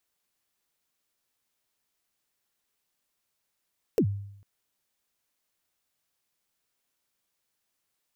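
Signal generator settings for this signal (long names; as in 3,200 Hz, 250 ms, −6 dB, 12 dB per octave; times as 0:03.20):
synth kick length 0.45 s, from 510 Hz, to 100 Hz, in 77 ms, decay 0.74 s, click on, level −17 dB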